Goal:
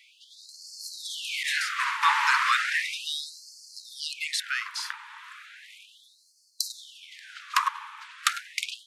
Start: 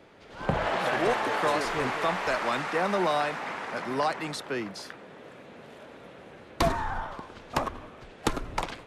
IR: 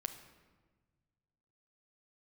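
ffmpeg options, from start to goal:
-filter_complex "[0:a]asettb=1/sr,asplit=3[link_01][link_02][link_03];[link_01]atrim=end=1.434[link_04];[link_02]atrim=start=1.43:end=2.03,asetpts=PTS-STARTPTS,afade=type=in:duration=0.004:curve=qsin,afade=type=out:start_time=0.596:duration=0.004:curve=qsin,agate=range=-33dB:threshold=-24dB:ratio=3:detection=peak[link_05];[link_03]atrim=start=2.026[link_06];[link_04][link_05]acrossfade=duration=0.004:curve1=hsin:curve2=qsin[link_07];[link_07][link_06]acrossfade=duration=0.004:curve1=qsin:curve2=hsin,afftfilt=real='re*gte(b*sr/1024,820*pow(4300/820,0.5+0.5*sin(2*PI*0.35*pts/sr)))':imag='im*gte(b*sr/1024,820*pow(4300/820,0.5+0.5*sin(2*PI*0.35*pts/sr)))':win_size=1024:overlap=0.75,volume=8.5dB"

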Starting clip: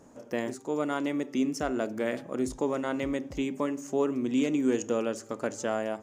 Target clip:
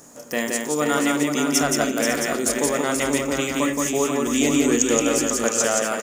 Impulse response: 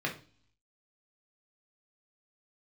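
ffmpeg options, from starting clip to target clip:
-filter_complex "[0:a]aecho=1:1:173|480|550|667:0.708|0.501|0.224|0.422,asplit=2[link_01][link_02];[1:a]atrim=start_sample=2205,lowpass=2700[link_03];[link_02][link_03]afir=irnorm=-1:irlink=0,volume=-11dB[link_04];[link_01][link_04]amix=inputs=2:normalize=0,asettb=1/sr,asplit=3[link_05][link_06][link_07];[link_05]atrim=end=4.264[link_08];[link_06]atrim=start=4.26:end=5.45,asetpts=PTS-STARTPTS,afade=type=in:duration=0.004:curve=qsin,afade=type=out:start_time=1.186:duration=0.004:curve=qsin,aeval=exprs='val(0)+0.00631*(sin(2*PI*50*n/s)+sin(2*PI*2*50*n/s)/2+sin(2*PI*3*50*n/s)/3+sin(2*PI*4*50*n/s)/4+sin(2*PI*5*50*n/s)/5)':channel_layout=same[link_09];[link_07]atrim=start=5.446[link_10];[link_08][link_09]acrossfade=duration=0.004:curve1=hsin:curve2=qsin[link_11];[link_11][link_10]acrossfade=duration=0.004:curve1=qsin:curve2=hsin,crystalizer=i=9.5:c=0"

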